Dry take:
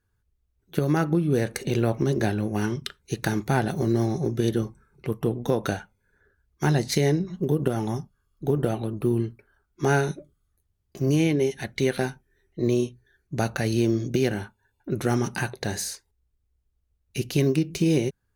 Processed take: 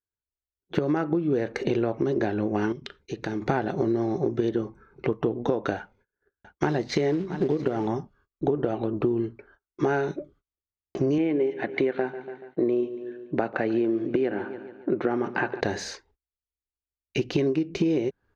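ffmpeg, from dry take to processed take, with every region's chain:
-filter_complex "[0:a]asettb=1/sr,asplit=3[s0][s1][s2];[s0]atrim=end=2.724[s3];[s1]atrim=start=2.72:end=3.42,asetpts=PTS-STARTPTS,afade=t=in:d=0.004:c=qsin,afade=t=out:st=0.696:d=0.004:c=qsin,equalizer=f=1100:w=0.78:g=-5.5,acompressor=threshold=0.00708:ratio=2:attack=3.2:release=140:knee=1:detection=peak[s4];[s2]atrim=start=3.416[s5];[s3][s4]acrossfade=d=0.004:c1=hsin:c2=qsin[s6];[s6][s5]acrossfade=d=0.004:c1=qsin:c2=hsin,asettb=1/sr,asplit=3[s7][s8][s9];[s7]atrim=end=5.774[s10];[s8]atrim=start=5.77:end=7.87,asetpts=PTS-STARTPTS,afade=t=in:d=0.004:c=qsin,afade=t=out:st=2.096:d=0.004:c=qsin,acrusher=bits=5:mode=log:mix=0:aa=0.000001,aecho=1:1:672:0.126,atrim=end_sample=92610[s11];[s9]atrim=start=7.866[s12];[s10][s11]acrossfade=d=0.004:c1=hsin:c2=qsin[s13];[s13][s12]acrossfade=d=0.004:c1=qsin:c2=hsin,asettb=1/sr,asplit=3[s14][s15][s16];[s14]atrim=end=11.184[s17];[s15]atrim=start=11.18:end=15.61,asetpts=PTS-STARTPTS,afade=t=in:d=0.004:c=qsin,afade=t=out:st=4.426:d=0.004:c=qsin,highpass=180,lowpass=2500,aecho=1:1:143|286|429|572:0.119|0.0582|0.0285|0.014,atrim=end_sample=195363[s18];[s16]atrim=start=15.606[s19];[s17][s18]acrossfade=d=0.004:c1=hsin:c2=qsin[s20];[s20][s19]acrossfade=d=0.004:c1=qsin:c2=hsin,agate=range=0.0316:threshold=0.00112:ratio=16:detection=peak,firequalizer=gain_entry='entry(150,0);entry(310,10);entry(6400,-7);entry(9900,-28)':delay=0.05:min_phase=1,acompressor=threshold=0.0631:ratio=6,volume=1.26"

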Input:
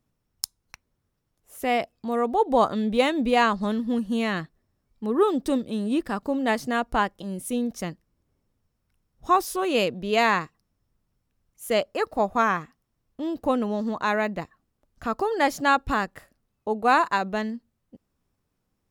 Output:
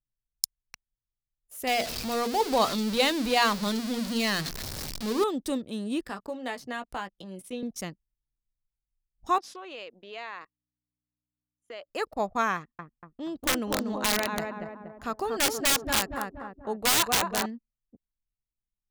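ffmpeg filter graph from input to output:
-filter_complex "[0:a]asettb=1/sr,asplit=3[s0][s1][s2];[s0]atrim=end=1.674[s3];[s1]atrim=start=1.67:end=5.24,asetpts=PTS-STARTPTS,afade=t=in:d=0.004:c=qsin,afade=t=out:st=3.566:d=0.004:c=qsin,aeval=exprs='val(0)+0.5*0.0473*sgn(val(0))':c=same,equalizer=f=4500:t=o:w=0.66:g=8,bandreject=f=60:t=h:w=6,bandreject=f=120:t=h:w=6,bandreject=f=180:t=h:w=6,bandreject=f=240:t=h:w=6,bandreject=f=300:t=h:w=6,bandreject=f=360:t=h:w=6,bandreject=f=420:t=h:w=6,bandreject=f=480:t=h:w=6[s4];[s2]atrim=start=5.236[s5];[s3][s4]acrossfade=d=0.004:c1=hsin:c2=qsin[s6];[s6][s5]acrossfade=d=0.004:c1=qsin:c2=hsin,asettb=1/sr,asplit=3[s7][s8][s9];[s7]atrim=end=6.064[s10];[s8]atrim=start=6.06:end=7.63,asetpts=PTS-STARTPTS,afade=t=in:d=0.004:c=qsin,afade=t=out:st=1.566:d=0.004:c=qsin,acrossover=split=340|4500[s11][s12][s13];[s11]acompressor=threshold=0.01:ratio=4[s14];[s12]acompressor=threshold=0.0398:ratio=4[s15];[s13]acompressor=threshold=0.00178:ratio=4[s16];[s14][s15][s16]amix=inputs=3:normalize=0,asplit=2[s17][s18];[s18]adelay=16,volume=0.398[s19];[s17][s19]amix=inputs=2:normalize=0,atrim=end_sample=69237[s20];[s9]atrim=start=7.626[s21];[s10][s20]acrossfade=d=0.004:c1=hsin:c2=qsin[s22];[s22][s21]acrossfade=d=0.004:c1=qsin:c2=hsin,asettb=1/sr,asplit=3[s23][s24][s25];[s23]atrim=end=9.384[s26];[s24]atrim=start=9.38:end=11.9,asetpts=PTS-STARTPTS,afade=t=in:d=0.004:c=qsin,afade=t=out:st=2.516:d=0.004:c=qsin,acompressor=threshold=0.0355:ratio=10:attack=3.2:release=140:knee=1:detection=peak,aeval=exprs='val(0)+0.00501*(sin(2*PI*60*n/s)+sin(2*PI*2*60*n/s)/2+sin(2*PI*3*60*n/s)/3+sin(2*PI*4*60*n/s)/4+sin(2*PI*5*60*n/s)/5)':c=same,highpass=460,lowpass=3800[s27];[s25]atrim=start=11.896[s28];[s26][s27]acrossfade=d=0.004:c1=hsin:c2=qsin[s29];[s29][s28]acrossfade=d=0.004:c1=qsin:c2=hsin,asettb=1/sr,asplit=3[s30][s31][s32];[s30]atrim=end=12.554[s33];[s31]atrim=start=12.55:end=17.46,asetpts=PTS-STARTPTS,afade=t=in:d=0.004:c=qsin,afade=t=out:st=4.906:d=0.004:c=qsin,asplit=2[s34][s35];[s35]adelay=238,lowpass=f=1400:p=1,volume=0.668,asplit=2[s36][s37];[s37]adelay=238,lowpass=f=1400:p=1,volume=0.54,asplit=2[s38][s39];[s39]adelay=238,lowpass=f=1400:p=1,volume=0.54,asplit=2[s40][s41];[s41]adelay=238,lowpass=f=1400:p=1,volume=0.54,asplit=2[s42][s43];[s43]adelay=238,lowpass=f=1400:p=1,volume=0.54,asplit=2[s44][s45];[s45]adelay=238,lowpass=f=1400:p=1,volume=0.54,asplit=2[s46][s47];[s47]adelay=238,lowpass=f=1400:p=1,volume=0.54[s48];[s34][s36][s38][s40][s42][s44][s46][s48]amix=inputs=8:normalize=0,atrim=end_sample=216531,aeval=exprs='(mod(5.31*val(0)+1,2)-1)/5.31':c=same[s49];[s32]atrim=start=17.456[s50];[s33][s49]acrossfade=d=0.004:c1=hsin:c2=qsin[s51];[s51][s50]acrossfade=d=0.004:c1=qsin:c2=hsin,highshelf=f=2500:g=8,anlmdn=0.158,volume=0.501"

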